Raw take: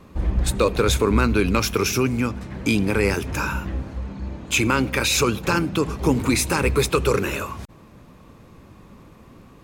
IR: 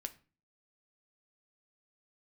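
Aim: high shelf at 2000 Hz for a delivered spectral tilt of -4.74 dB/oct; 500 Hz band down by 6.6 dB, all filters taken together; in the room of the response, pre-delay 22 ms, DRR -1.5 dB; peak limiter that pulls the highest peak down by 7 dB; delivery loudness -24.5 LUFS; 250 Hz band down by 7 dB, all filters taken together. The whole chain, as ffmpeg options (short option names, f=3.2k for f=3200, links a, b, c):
-filter_complex "[0:a]equalizer=f=250:t=o:g=-7.5,equalizer=f=500:t=o:g=-5,highshelf=f=2k:g=-7.5,alimiter=limit=-15dB:level=0:latency=1,asplit=2[a][b];[1:a]atrim=start_sample=2205,adelay=22[c];[b][c]afir=irnorm=-1:irlink=0,volume=4dB[d];[a][d]amix=inputs=2:normalize=0,volume=-0.5dB"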